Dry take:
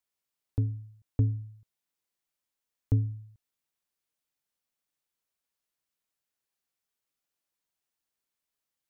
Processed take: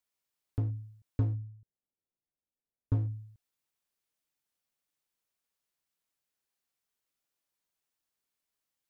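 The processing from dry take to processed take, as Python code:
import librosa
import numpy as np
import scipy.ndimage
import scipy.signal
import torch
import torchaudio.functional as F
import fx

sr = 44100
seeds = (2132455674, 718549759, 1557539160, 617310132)

p1 = fx.gaussian_blur(x, sr, sigma=12.0, at=(1.34, 2.97), fade=0.02)
p2 = 10.0 ** (-30.5 / 20.0) * (np.abs((p1 / 10.0 ** (-30.5 / 20.0) + 3.0) % 4.0 - 2.0) - 1.0)
p3 = p1 + F.gain(torch.from_numpy(p2), -6.5).numpy()
y = F.gain(torch.from_numpy(p3), -3.5).numpy()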